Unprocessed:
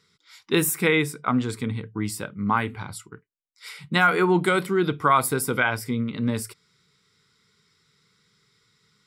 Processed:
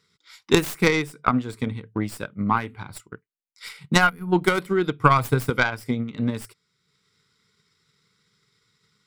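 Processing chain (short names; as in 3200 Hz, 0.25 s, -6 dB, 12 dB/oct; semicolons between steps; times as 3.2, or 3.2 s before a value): tracing distortion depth 0.12 ms; 4.09–4.32 spectral gain 270–9500 Hz -20 dB; 4.99–5.5 bell 120 Hz +14 dB 0.45 oct; transient shaper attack +8 dB, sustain -5 dB; gain -2.5 dB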